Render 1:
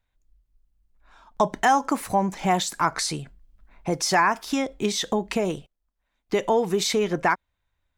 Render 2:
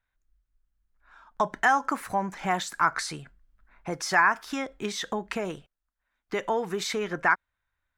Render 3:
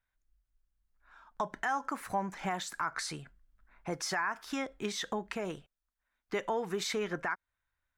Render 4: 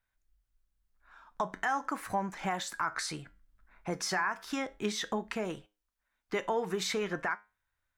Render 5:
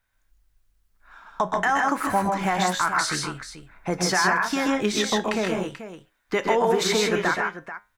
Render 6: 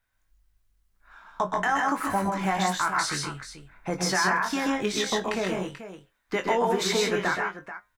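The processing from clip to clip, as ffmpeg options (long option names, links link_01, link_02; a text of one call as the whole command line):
ffmpeg -i in.wav -af "equalizer=frequency=1500:width_type=o:width=1.1:gain=11.5,volume=-8dB" out.wav
ffmpeg -i in.wav -af "alimiter=limit=-18.5dB:level=0:latency=1:release=199,volume=-4dB" out.wav
ffmpeg -i in.wav -af "flanger=delay=9.1:depth=1.8:regen=80:speed=0.38:shape=sinusoidal,volume=6dB" out.wav
ffmpeg -i in.wav -af "aecho=1:1:121|132|154|436:0.355|0.562|0.596|0.251,volume=8.5dB" out.wav
ffmpeg -i in.wav -filter_complex "[0:a]asplit=2[link_01][link_02];[link_02]adelay=21,volume=-7.5dB[link_03];[link_01][link_03]amix=inputs=2:normalize=0,volume=-3.5dB" out.wav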